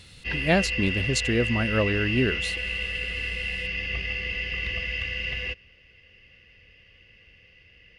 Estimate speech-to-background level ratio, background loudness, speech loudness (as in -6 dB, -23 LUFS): 2.0 dB, -28.0 LUFS, -26.0 LUFS